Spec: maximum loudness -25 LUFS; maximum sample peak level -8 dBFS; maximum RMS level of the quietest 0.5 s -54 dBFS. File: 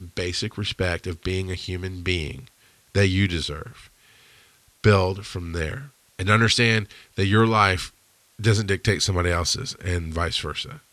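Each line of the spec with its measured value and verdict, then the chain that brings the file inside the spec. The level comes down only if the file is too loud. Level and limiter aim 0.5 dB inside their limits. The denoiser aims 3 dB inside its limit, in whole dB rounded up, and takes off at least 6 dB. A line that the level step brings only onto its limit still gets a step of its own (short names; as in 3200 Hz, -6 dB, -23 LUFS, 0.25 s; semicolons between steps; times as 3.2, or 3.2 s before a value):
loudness -23.0 LUFS: fail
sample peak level -2.5 dBFS: fail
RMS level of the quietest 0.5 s -59 dBFS: OK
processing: gain -2.5 dB; limiter -8.5 dBFS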